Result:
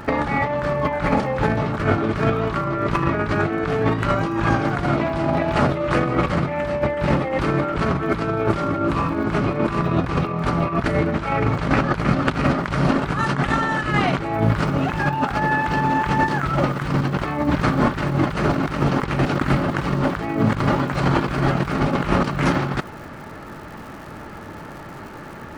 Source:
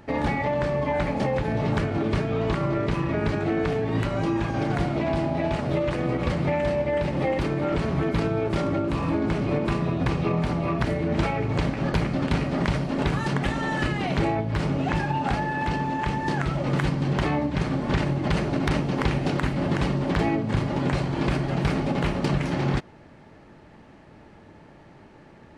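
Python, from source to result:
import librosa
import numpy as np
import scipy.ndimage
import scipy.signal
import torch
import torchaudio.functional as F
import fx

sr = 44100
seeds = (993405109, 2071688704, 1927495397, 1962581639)

y = fx.peak_eq(x, sr, hz=1300.0, db=9.5, octaves=0.68)
y = fx.over_compress(y, sr, threshold_db=-27.0, ratio=-0.5)
y = fx.dmg_crackle(y, sr, seeds[0], per_s=fx.steps((0.0, 37.0), (14.33, 320.0)), level_db=-45.0)
y = F.gain(torch.from_numpy(y), 7.5).numpy()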